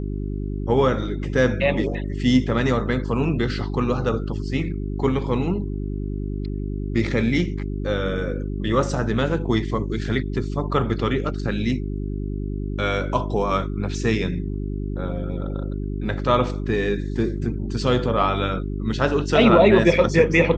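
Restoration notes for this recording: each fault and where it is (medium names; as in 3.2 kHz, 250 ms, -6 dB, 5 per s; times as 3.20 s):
hum 50 Hz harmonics 8 -27 dBFS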